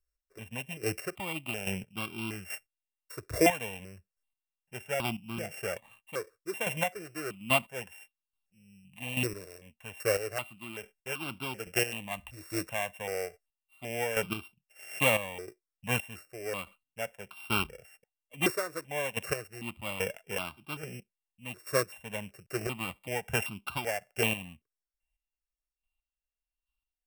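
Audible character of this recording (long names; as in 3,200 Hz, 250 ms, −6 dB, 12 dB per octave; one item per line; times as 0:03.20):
a buzz of ramps at a fixed pitch in blocks of 16 samples
chopped level 1.2 Hz, depth 65%, duty 20%
notches that jump at a steady rate 2.6 Hz 830–1,800 Hz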